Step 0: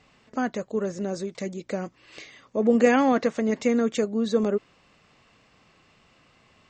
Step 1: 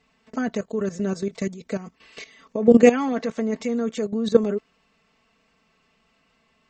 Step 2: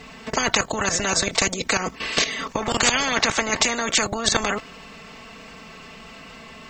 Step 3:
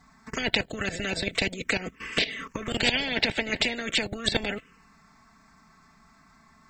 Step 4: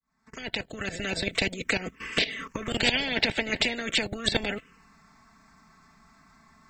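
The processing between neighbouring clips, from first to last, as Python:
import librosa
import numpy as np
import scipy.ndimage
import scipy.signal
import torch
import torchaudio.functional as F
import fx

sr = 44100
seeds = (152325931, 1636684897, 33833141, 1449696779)

y1 = x + 0.77 * np.pad(x, (int(4.5 * sr / 1000.0), 0))[:len(x)]
y1 = fx.level_steps(y1, sr, step_db=14)
y1 = F.gain(torch.from_numpy(y1), 4.5).numpy()
y2 = fx.spectral_comp(y1, sr, ratio=10.0)
y3 = fx.env_phaser(y2, sr, low_hz=460.0, high_hz=1200.0, full_db=-18.0)
y3 = fx.upward_expand(y3, sr, threshold_db=-44.0, expansion=1.5)
y4 = fx.fade_in_head(y3, sr, length_s=1.2)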